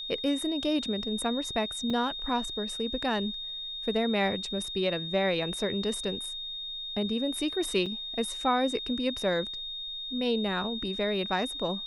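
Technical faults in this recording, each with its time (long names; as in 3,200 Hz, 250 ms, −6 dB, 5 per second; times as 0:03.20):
whistle 3,700 Hz −35 dBFS
0:01.90: drop-out 3.2 ms
0:07.86: drop-out 4.6 ms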